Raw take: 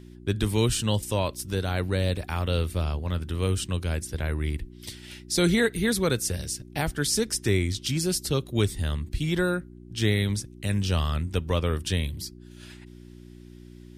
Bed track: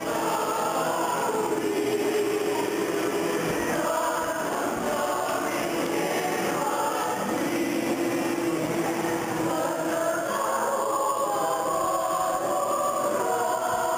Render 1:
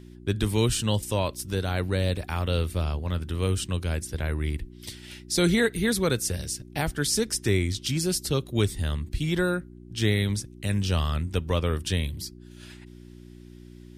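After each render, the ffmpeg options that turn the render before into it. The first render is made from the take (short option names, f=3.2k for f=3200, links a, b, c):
-af anull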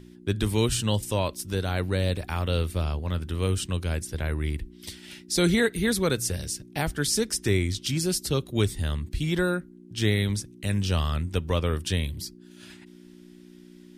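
-af "bandreject=f=60:t=h:w=4,bandreject=f=120:t=h:w=4"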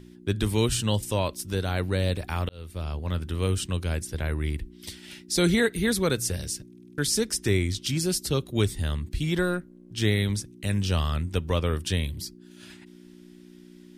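-filter_complex "[0:a]asettb=1/sr,asplit=3[a][b][c];[a]atrim=end=9.424[d];[b]atrim=start=9.42:end=9.93,asetpts=PTS-STARTPTS,afade=t=in:d=0.004:c=qsin,afade=t=out:st=0.506:d=0.004:c=qsin,aeval=exprs='if(lt(val(0),0),0.708*val(0),val(0))':c=same[e];[c]atrim=start=9.926[f];[d][e]acrossfade=d=0.004:c1=hsin:c2=qsin[g];[g][f]acrossfade=d=0.004:c1=qsin:c2=hsin,asplit=8[h][i][j][k][l][m][n][o];[h]atrim=end=2.49,asetpts=PTS-STARTPTS,afade=t=out:st=2.486:d=0.004:c=hsin[p];[i]atrim=start=2.49:end=6.732,asetpts=PTS-STARTPTS,afade=t=in:d=0.61[q];[j]atrim=start=6.678:end=6.732[r];[k]atrim=start=6.678:end=6.732[s];[l]atrim=start=6.678:end=6.732[t];[m]atrim=start=6.678:end=6.732[u];[n]atrim=start=6.678:end=6.732[v];[o]atrim=start=6.978[w];[p][q]concat=n=2:v=0:a=1[x];[x][r]acrossfade=d=0.004:c1=hsin:c2=hsin[y];[y][s]acrossfade=d=0.004:c1=hsin:c2=hsin[z];[z][t]acrossfade=d=0.004:c1=hsin:c2=hsin[aa];[aa][u]acrossfade=d=0.004:c1=hsin:c2=hsin[ab];[ab][v]acrossfade=d=0.004:c1=hsin:c2=hsin[ac];[ac][w]acrossfade=d=0.004:c1=hsin:c2=hsin"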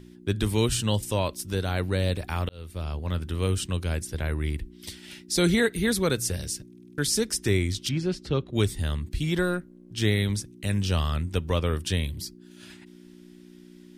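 -filter_complex "[0:a]asettb=1/sr,asplit=3[a][b][c];[a]atrim=end=7.894[d];[b]atrim=start=7.89:end=8.53,asetpts=PTS-STARTPTS,afade=t=in:d=0.004:c=qsin,afade=t=out:st=0.636:d=0.004:c=qsin,lowpass=2.8k[e];[c]atrim=start=8.526[f];[d][e]acrossfade=d=0.004:c1=hsin:c2=qsin[g];[g][f]acrossfade=d=0.004:c1=qsin:c2=hsin"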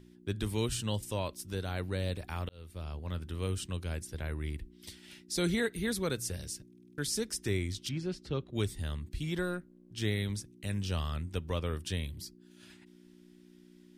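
-af "volume=-8.5dB"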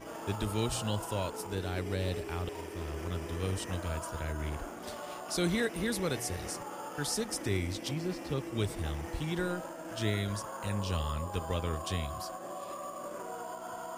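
-filter_complex "[1:a]volume=-16dB[a];[0:a][a]amix=inputs=2:normalize=0"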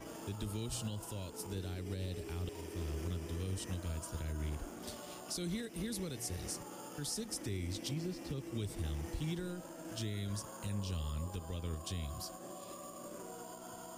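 -filter_complex "[0:a]alimiter=level_in=4dB:limit=-24dB:level=0:latency=1:release=260,volume=-4dB,acrossover=split=380|3000[a][b][c];[b]acompressor=threshold=-55dB:ratio=3[d];[a][d][c]amix=inputs=3:normalize=0"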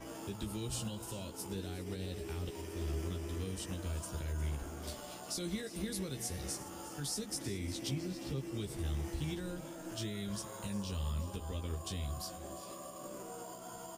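-filter_complex "[0:a]asplit=2[a][b];[b]adelay=15,volume=-5dB[c];[a][c]amix=inputs=2:normalize=0,aecho=1:1:356|407:0.168|0.126"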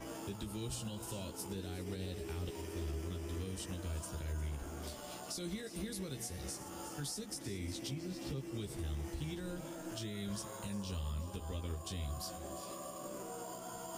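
-af "areverse,acompressor=mode=upward:threshold=-41dB:ratio=2.5,areverse,alimiter=level_in=7.5dB:limit=-24dB:level=0:latency=1:release=318,volume=-7.5dB"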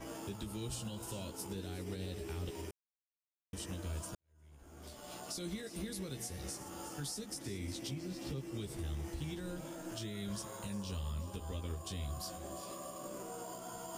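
-filter_complex "[0:a]asplit=4[a][b][c][d];[a]atrim=end=2.71,asetpts=PTS-STARTPTS,afade=t=out:st=2.706:d=0.004:c=hsin[e];[b]atrim=start=2.71:end=3.53,asetpts=PTS-STARTPTS,volume=0[f];[c]atrim=start=3.53:end=4.15,asetpts=PTS-STARTPTS,afade=t=in:d=0.004:c=hsin,afade=t=out:st=0.616:d=0.004:c=hsin[g];[d]atrim=start=4.15,asetpts=PTS-STARTPTS,afade=t=in:d=1.04:c=qua[h];[e][f][g][h]concat=n=4:v=0:a=1"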